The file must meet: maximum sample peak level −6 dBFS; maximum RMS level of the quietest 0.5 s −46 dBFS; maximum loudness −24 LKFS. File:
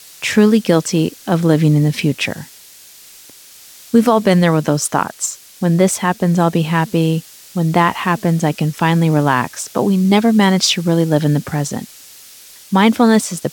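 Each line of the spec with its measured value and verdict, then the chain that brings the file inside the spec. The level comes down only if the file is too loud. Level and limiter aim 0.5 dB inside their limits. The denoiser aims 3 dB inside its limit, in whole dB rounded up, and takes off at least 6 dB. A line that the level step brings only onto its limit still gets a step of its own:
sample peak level −1.5 dBFS: out of spec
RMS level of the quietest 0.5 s −41 dBFS: out of spec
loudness −15.0 LKFS: out of spec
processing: level −9.5 dB

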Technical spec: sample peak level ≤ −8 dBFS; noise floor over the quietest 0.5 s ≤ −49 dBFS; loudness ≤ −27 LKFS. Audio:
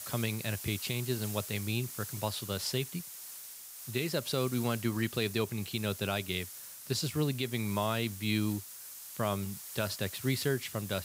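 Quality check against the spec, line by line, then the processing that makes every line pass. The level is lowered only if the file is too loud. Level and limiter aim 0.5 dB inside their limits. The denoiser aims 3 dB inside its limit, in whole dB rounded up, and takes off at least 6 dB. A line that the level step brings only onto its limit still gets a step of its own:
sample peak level −17.0 dBFS: in spec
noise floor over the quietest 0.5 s −47 dBFS: out of spec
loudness −34.0 LKFS: in spec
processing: broadband denoise 6 dB, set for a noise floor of −47 dBFS

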